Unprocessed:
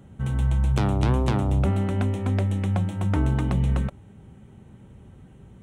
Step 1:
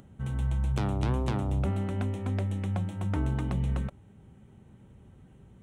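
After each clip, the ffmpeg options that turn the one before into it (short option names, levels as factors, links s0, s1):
-af "acompressor=mode=upward:threshold=0.00631:ratio=2.5,volume=0.473"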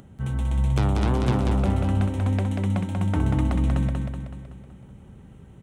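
-af "aecho=1:1:188|376|564|752|940|1128|1316:0.668|0.348|0.181|0.094|0.0489|0.0254|0.0132,volume=1.78"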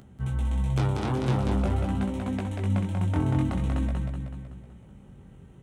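-af "flanger=delay=15.5:depth=7.4:speed=0.46"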